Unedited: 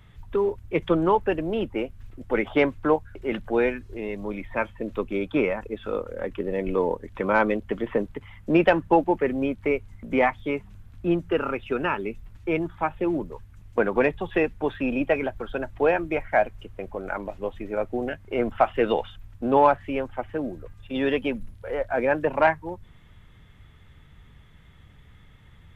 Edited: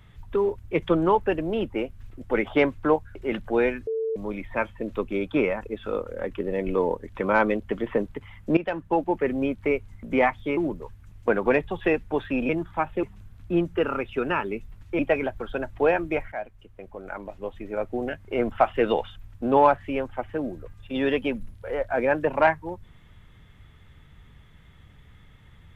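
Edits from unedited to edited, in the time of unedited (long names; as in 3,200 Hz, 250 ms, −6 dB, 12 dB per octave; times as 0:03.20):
0:03.87–0:04.16: beep over 446 Hz −24 dBFS
0:08.57–0:09.33: fade in, from −15 dB
0:10.57–0:12.53: swap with 0:13.07–0:14.99
0:16.32–0:18.21: fade in linear, from −13.5 dB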